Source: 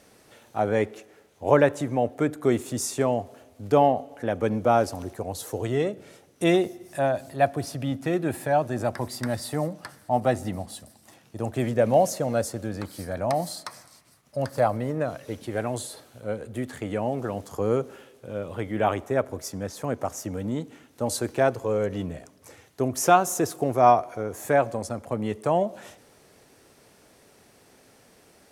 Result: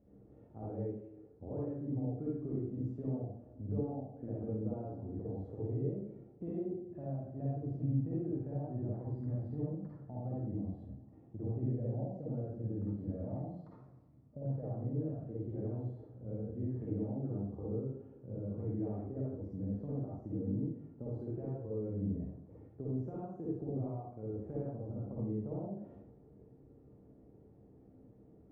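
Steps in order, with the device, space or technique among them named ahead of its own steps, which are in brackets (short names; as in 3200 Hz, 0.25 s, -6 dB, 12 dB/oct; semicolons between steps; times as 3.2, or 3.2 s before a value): television next door (compressor 4:1, threshold -34 dBFS, peak gain reduction 18.5 dB; LPF 280 Hz 12 dB/oct; reverb RT60 0.65 s, pre-delay 46 ms, DRR -6.5 dB); gain -4.5 dB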